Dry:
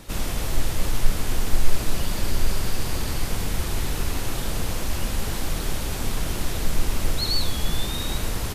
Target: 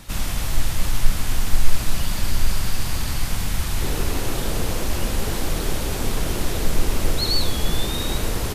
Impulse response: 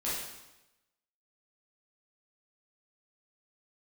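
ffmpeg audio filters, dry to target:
-af "asetnsamples=nb_out_samples=441:pad=0,asendcmd='3.81 equalizer g 4',equalizer=frequency=420:width_type=o:width=1.2:gain=-8,volume=2.5dB"

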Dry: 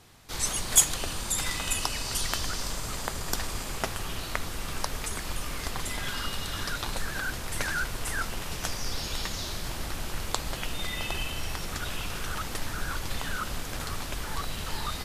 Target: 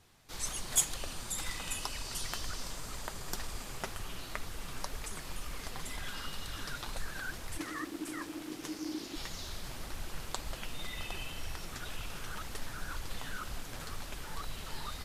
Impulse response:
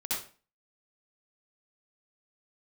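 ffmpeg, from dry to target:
-filter_complex "[0:a]flanger=delay=0.4:depth=8.2:regen=52:speed=2:shape=triangular,asplit=3[link_01][link_02][link_03];[link_01]afade=type=out:start_time=7.57:duration=0.02[link_04];[link_02]aeval=exprs='val(0)*sin(2*PI*310*n/s)':channel_layout=same,afade=type=in:start_time=7.57:duration=0.02,afade=type=out:start_time=9.15:duration=0.02[link_05];[link_03]afade=type=in:start_time=9.15:duration=0.02[link_06];[link_04][link_05][link_06]amix=inputs=3:normalize=0,volume=-4.5dB"

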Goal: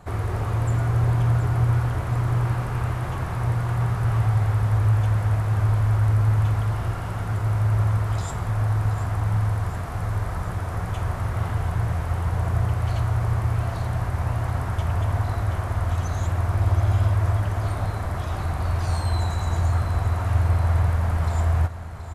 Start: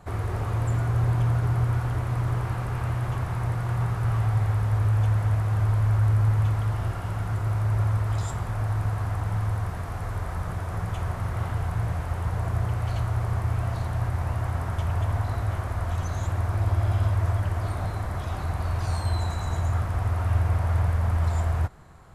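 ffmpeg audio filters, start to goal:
ffmpeg -i in.wav -af "aecho=1:1:727|1454|2181|2908|3635|4362:0.251|0.136|0.0732|0.0396|0.0214|0.0115,volume=2.5dB" out.wav

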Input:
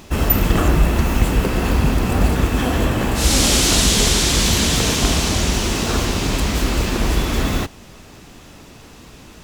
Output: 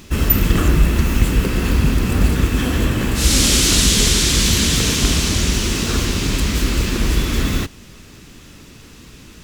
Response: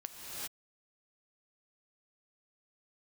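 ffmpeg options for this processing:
-af "equalizer=frequency=740:width=1.3:gain=-10.5,volume=1.5dB"

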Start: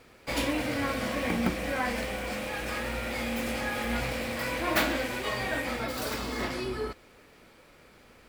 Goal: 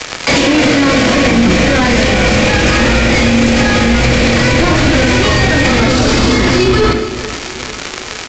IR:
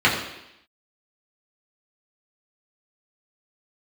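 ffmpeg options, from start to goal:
-filter_complex "[0:a]asplit=2[link_01][link_02];[link_02]highpass=frequency=720:poles=1,volume=29dB,asoftclip=type=tanh:threshold=-11dB[link_03];[link_01][link_03]amix=inputs=2:normalize=0,lowpass=frequency=2700:poles=1,volume=-6dB,lowshelf=frequency=140:gain=9,acrossover=split=130|3400[link_04][link_05][link_06];[link_04]dynaudnorm=framelen=250:gausssize=11:maxgain=14dB[link_07];[link_07][link_05][link_06]amix=inputs=3:normalize=0,aemphasis=mode=production:type=riaa,aeval=exprs='sgn(val(0))*max(abs(val(0))-0.0316,0)':channel_layout=same,acrossover=split=380[link_08][link_09];[link_09]acompressor=threshold=-43dB:ratio=2.5[link_10];[link_08][link_10]amix=inputs=2:normalize=0,aecho=1:1:439|878|1317|1756:0.0708|0.0396|0.0222|0.0124,asplit=2[link_11][link_12];[1:a]atrim=start_sample=2205,adelay=20[link_13];[link_12][link_13]afir=irnorm=-1:irlink=0,volume=-30dB[link_14];[link_11][link_14]amix=inputs=2:normalize=0,aresample=16000,aresample=44100,alimiter=level_in=30dB:limit=-1dB:release=50:level=0:latency=1,volume=-1dB"

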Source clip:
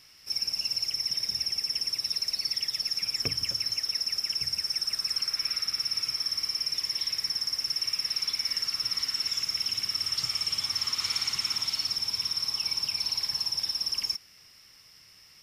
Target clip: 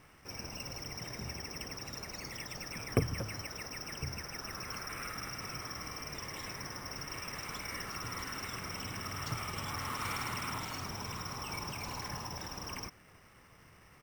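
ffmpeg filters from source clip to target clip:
ffmpeg -i in.wav -af "lowpass=1300,acrusher=samples=4:mix=1:aa=0.000001,atempo=1.1,volume=9dB" out.wav

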